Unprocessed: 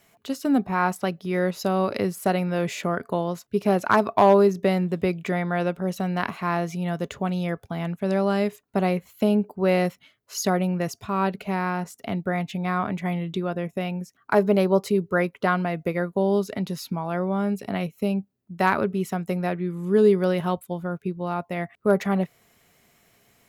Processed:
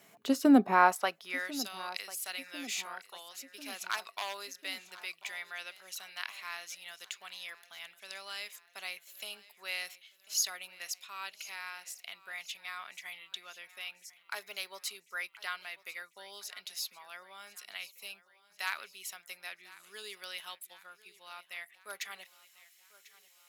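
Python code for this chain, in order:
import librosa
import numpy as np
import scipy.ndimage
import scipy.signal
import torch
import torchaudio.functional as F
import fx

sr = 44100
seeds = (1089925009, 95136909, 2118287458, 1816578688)

y = fx.filter_sweep_highpass(x, sr, from_hz=180.0, to_hz=3100.0, start_s=0.43, end_s=1.59, q=0.87)
y = fx.echo_feedback(y, sr, ms=1045, feedback_pct=54, wet_db=-19.0)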